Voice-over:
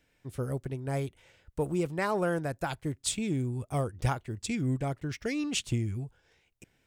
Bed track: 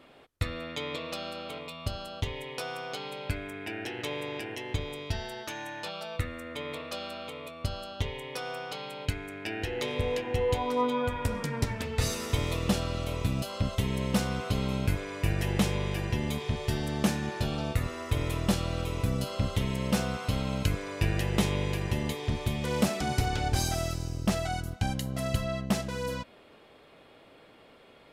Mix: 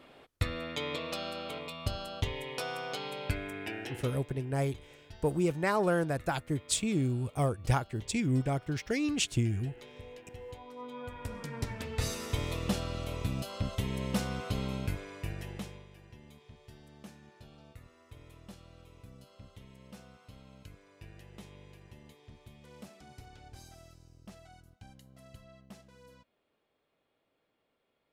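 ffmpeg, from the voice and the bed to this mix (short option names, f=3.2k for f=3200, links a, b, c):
-filter_complex "[0:a]adelay=3650,volume=1dB[a];[1:a]volume=13.5dB,afade=t=out:st=3.61:d=0.63:silence=0.125893,afade=t=in:st=10.78:d=1.17:silence=0.199526,afade=t=out:st=14.6:d=1.27:silence=0.112202[b];[a][b]amix=inputs=2:normalize=0"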